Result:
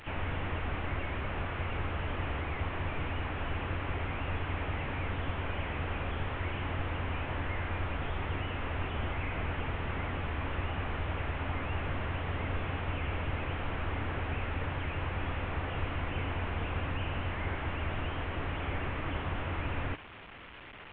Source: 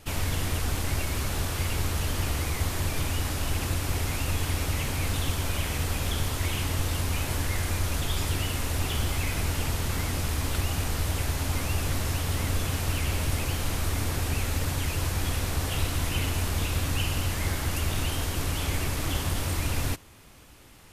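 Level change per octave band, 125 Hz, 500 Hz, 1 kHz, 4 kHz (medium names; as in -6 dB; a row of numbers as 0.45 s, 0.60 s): -7.0 dB, -3.0 dB, -1.5 dB, -12.0 dB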